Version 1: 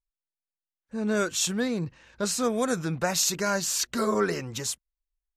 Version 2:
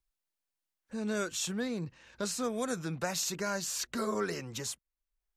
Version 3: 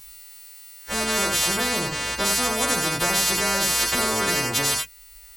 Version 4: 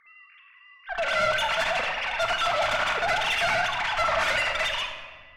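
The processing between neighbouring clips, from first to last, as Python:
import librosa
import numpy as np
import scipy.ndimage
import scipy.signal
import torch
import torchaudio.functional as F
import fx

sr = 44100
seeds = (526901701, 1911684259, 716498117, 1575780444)

y1 = fx.band_squash(x, sr, depth_pct=40)
y1 = F.gain(torch.from_numpy(y1), -7.5).numpy()
y2 = fx.freq_snap(y1, sr, grid_st=2)
y2 = fx.rev_gated(y2, sr, seeds[0], gate_ms=110, shape='flat', drr_db=5.0)
y2 = fx.spectral_comp(y2, sr, ratio=4.0)
y2 = F.gain(torch.from_numpy(y2), 4.5).numpy()
y3 = fx.sine_speech(y2, sr)
y3 = fx.tube_stage(y3, sr, drive_db=23.0, bias=0.55)
y3 = fx.room_shoebox(y3, sr, seeds[1], volume_m3=1600.0, walls='mixed', distance_m=1.6)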